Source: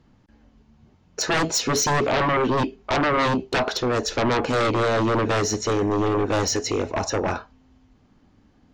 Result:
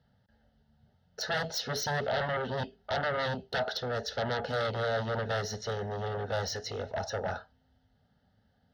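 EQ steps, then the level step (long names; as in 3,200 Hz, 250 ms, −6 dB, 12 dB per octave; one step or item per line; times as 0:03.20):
high-pass filter 73 Hz
phaser with its sweep stopped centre 1,600 Hz, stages 8
−6.5 dB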